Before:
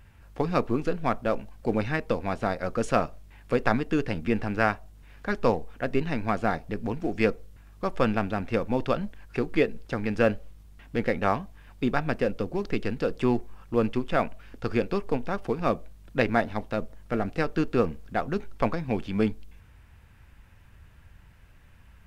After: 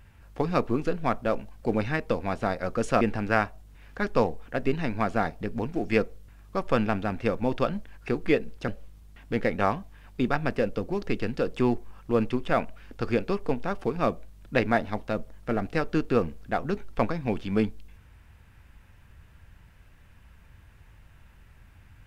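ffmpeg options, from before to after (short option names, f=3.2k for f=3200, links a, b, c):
-filter_complex "[0:a]asplit=3[a][b][c];[a]atrim=end=3.012[d];[b]atrim=start=4.288:end=9.962[e];[c]atrim=start=10.308[f];[d][e]acrossfade=d=0.004:c1=hsin:c2=hsin[g];[g][f]acrossfade=d=0.004:c1=hsin:c2=hsin"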